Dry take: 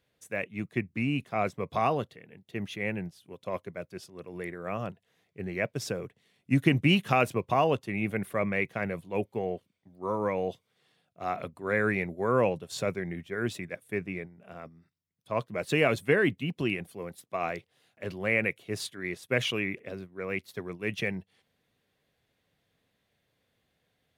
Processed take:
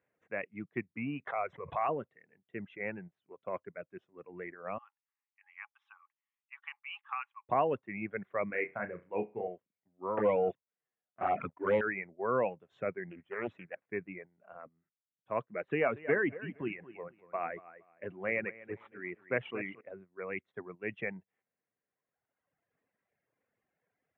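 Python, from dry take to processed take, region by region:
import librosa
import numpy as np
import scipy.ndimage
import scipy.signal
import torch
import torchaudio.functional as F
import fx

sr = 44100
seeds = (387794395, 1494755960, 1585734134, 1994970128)

y = fx.chain(x, sr, fx.lowpass(hz=11000.0, slope=12),
    fx.peak_eq(hz=240.0, db=-12.0, octaves=1.5),
    fx.pre_swell(db_per_s=50.0), at=(1.27, 1.89))
y = fx.chain(y, sr, fx.cheby_ripple_highpass(hz=810.0, ripple_db=9),
    fx.high_shelf(hz=5000.0, db=-11.5), at=(4.78, 7.49))
y = fx.chain(y, sr, fx.lowpass(hz=3700.0, slope=12),
    fx.room_flutter(wall_m=5.7, rt60_s=0.34), at=(8.47, 9.48))
y = fx.chain(y, sr, fx.leveller(passes=3),
    fx.env_flanger(rest_ms=10.5, full_db=-18.0), at=(10.17, 11.81))
y = fx.chain(y, sr, fx.cvsd(bps=64000),
    fx.doppler_dist(depth_ms=0.66), at=(13.1, 13.86))
y = fx.chain(y, sr, fx.median_filter(points=9),
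    fx.echo_feedback(ms=233, feedback_pct=30, wet_db=-9), at=(15.68, 19.81))
y = scipy.signal.sosfilt(scipy.signal.cheby2(4, 40, 4300.0, 'lowpass', fs=sr, output='sos'), y)
y = fx.dereverb_blind(y, sr, rt60_s=1.7)
y = fx.highpass(y, sr, hz=300.0, slope=6)
y = y * librosa.db_to_amplitude(-2.5)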